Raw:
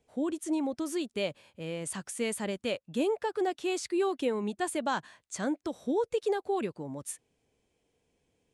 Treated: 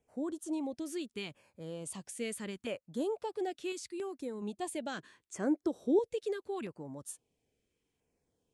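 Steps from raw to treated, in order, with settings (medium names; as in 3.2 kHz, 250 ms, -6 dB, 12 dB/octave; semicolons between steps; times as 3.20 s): 4.98–5.99 s: peaking EQ 370 Hz +10.5 dB 0.9 oct; LFO notch saw down 0.75 Hz 500–4300 Hz; 3.72–4.42 s: peaking EQ 1 kHz -8.5 dB 2.9 oct; trim -5.5 dB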